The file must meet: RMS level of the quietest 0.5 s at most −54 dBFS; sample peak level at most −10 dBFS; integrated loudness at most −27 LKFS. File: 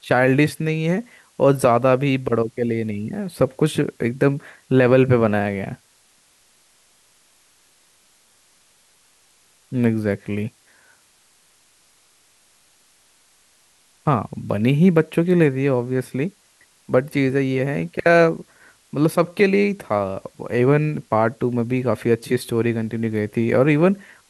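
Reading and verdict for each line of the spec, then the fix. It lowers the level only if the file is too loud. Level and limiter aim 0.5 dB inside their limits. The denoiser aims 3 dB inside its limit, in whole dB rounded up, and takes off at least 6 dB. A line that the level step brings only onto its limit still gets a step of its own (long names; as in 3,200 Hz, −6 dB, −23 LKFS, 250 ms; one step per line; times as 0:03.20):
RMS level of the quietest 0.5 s −58 dBFS: in spec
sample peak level −4.5 dBFS: out of spec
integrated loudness −20.0 LKFS: out of spec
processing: level −7.5 dB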